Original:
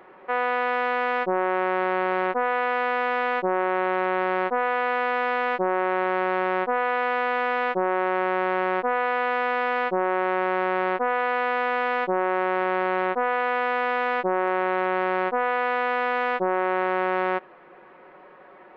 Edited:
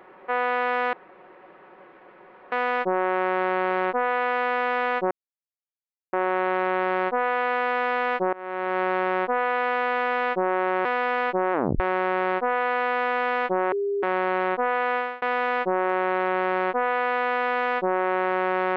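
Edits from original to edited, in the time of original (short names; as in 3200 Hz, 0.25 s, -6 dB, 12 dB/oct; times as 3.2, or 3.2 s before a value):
0.93 insert room tone 1.59 s
3.52 insert silence 1.02 s
5.72–6.19 fade in, from -23 dB
8.24–9.43 cut
10.11 tape stop 0.27 s
12.3–12.61 bleep 402 Hz -22.5 dBFS
13.54–13.8 fade out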